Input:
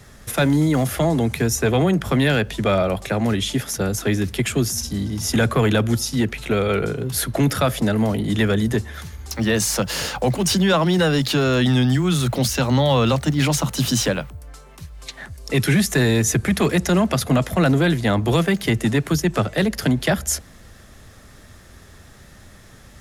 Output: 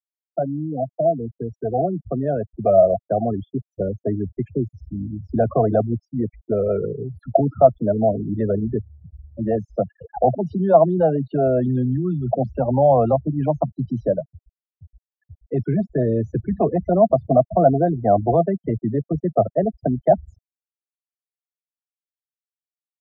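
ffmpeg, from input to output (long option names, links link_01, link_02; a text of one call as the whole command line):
ffmpeg -i in.wav -af "dynaudnorm=framelen=280:gausssize=17:maxgain=10dB,afftfilt=real='re*gte(hypot(re,im),0.398)':imag='im*gte(hypot(re,im),0.398)':win_size=1024:overlap=0.75,lowpass=frequency=690:width_type=q:width=8.2,volume=-10.5dB" out.wav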